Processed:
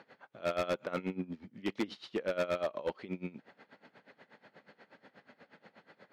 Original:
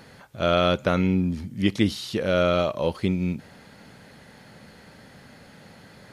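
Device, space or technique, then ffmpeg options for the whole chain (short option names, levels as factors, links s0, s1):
helicopter radio: -af "highpass=300,lowpass=2800,aeval=exprs='val(0)*pow(10,-20*(0.5-0.5*cos(2*PI*8.3*n/s))/20)':c=same,asoftclip=type=hard:threshold=0.0668,volume=0.708"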